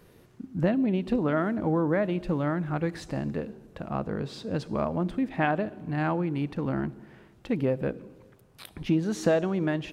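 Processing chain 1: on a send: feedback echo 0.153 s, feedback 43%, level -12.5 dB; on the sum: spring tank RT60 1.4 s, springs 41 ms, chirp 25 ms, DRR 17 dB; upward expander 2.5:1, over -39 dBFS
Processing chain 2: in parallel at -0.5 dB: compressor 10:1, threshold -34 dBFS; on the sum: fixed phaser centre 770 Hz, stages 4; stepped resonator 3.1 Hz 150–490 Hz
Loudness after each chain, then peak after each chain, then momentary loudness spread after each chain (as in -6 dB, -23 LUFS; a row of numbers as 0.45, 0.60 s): -35.0, -43.0 LUFS; -10.5, -21.0 dBFS; 19, 18 LU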